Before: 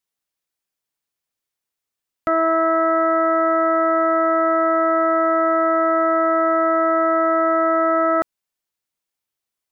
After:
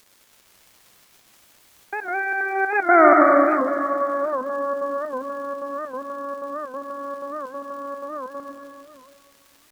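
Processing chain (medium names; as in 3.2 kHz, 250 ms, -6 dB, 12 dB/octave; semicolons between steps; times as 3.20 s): Doppler pass-by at 3.00 s, 56 m/s, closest 7.1 m; gate -39 dBFS, range -8 dB; upward compressor, threshold -25 dBFS; trance gate "xxx.x.xxx." 187 bpm -60 dB; crackle 200 per s -46 dBFS; reverberation RT60 2.3 s, pre-delay 83 ms, DRR -0.5 dB; warped record 78 rpm, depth 160 cents; trim +5 dB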